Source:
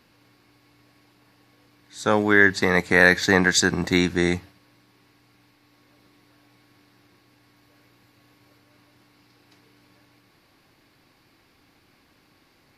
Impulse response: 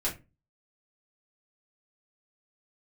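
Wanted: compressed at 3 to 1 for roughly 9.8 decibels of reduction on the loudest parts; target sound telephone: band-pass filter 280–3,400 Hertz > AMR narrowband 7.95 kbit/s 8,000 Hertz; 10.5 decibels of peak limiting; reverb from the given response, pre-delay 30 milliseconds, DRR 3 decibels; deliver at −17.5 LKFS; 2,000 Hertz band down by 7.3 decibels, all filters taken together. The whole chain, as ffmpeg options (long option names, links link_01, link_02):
-filter_complex "[0:a]equalizer=frequency=2000:width_type=o:gain=-8.5,acompressor=threshold=-28dB:ratio=3,alimiter=level_in=0.5dB:limit=-24dB:level=0:latency=1,volume=-0.5dB,asplit=2[link_01][link_02];[1:a]atrim=start_sample=2205,adelay=30[link_03];[link_02][link_03]afir=irnorm=-1:irlink=0,volume=-9dB[link_04];[link_01][link_04]amix=inputs=2:normalize=0,highpass=280,lowpass=3400,volume=20.5dB" -ar 8000 -c:a libopencore_amrnb -b:a 7950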